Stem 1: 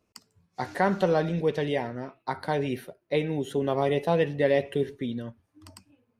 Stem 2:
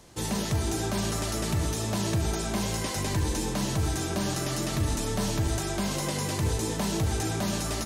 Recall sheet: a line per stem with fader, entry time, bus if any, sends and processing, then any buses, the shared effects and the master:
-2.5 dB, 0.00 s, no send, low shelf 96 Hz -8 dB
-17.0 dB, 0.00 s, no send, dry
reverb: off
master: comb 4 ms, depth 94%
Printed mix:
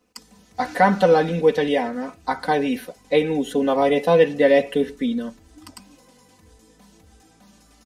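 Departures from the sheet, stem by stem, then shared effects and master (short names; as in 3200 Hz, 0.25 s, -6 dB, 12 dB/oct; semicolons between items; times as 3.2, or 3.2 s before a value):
stem 1 -2.5 dB -> +5.0 dB; stem 2 -17.0 dB -> -26.0 dB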